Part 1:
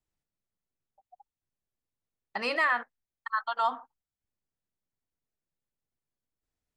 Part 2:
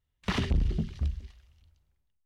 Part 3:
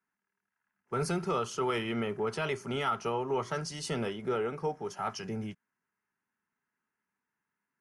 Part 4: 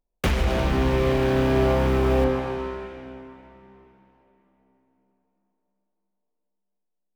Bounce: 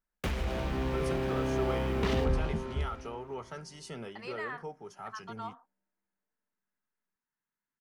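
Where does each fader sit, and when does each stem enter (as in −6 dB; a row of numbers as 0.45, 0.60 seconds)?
−14.0, −4.0, −9.0, −10.5 decibels; 1.80, 1.75, 0.00, 0.00 seconds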